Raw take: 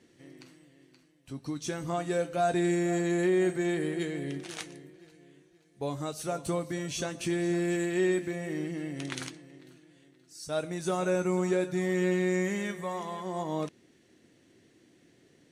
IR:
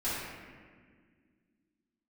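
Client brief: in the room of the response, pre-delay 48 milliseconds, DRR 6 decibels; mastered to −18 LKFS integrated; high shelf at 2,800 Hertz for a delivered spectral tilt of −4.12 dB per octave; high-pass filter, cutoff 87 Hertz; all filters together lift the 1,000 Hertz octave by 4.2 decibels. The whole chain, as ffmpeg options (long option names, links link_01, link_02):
-filter_complex "[0:a]highpass=87,equalizer=frequency=1000:width_type=o:gain=7.5,highshelf=frequency=2800:gain=-7.5,asplit=2[link_01][link_02];[1:a]atrim=start_sample=2205,adelay=48[link_03];[link_02][link_03]afir=irnorm=-1:irlink=0,volume=-13.5dB[link_04];[link_01][link_04]amix=inputs=2:normalize=0,volume=11.5dB"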